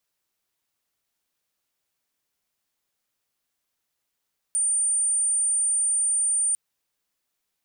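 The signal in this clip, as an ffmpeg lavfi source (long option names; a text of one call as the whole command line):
ffmpeg -f lavfi -i "aevalsrc='0.1*sin(2*PI*9030*t)':duration=2:sample_rate=44100" out.wav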